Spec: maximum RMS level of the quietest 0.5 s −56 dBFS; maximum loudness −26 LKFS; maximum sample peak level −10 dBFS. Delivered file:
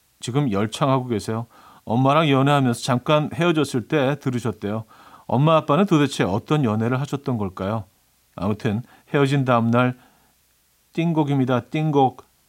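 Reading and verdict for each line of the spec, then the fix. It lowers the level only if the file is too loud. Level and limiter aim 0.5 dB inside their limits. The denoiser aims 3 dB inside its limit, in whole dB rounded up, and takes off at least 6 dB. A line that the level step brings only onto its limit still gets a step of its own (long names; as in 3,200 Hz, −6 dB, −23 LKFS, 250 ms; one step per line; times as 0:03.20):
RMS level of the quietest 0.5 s −62 dBFS: in spec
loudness −21.0 LKFS: out of spec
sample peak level −5.0 dBFS: out of spec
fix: level −5.5 dB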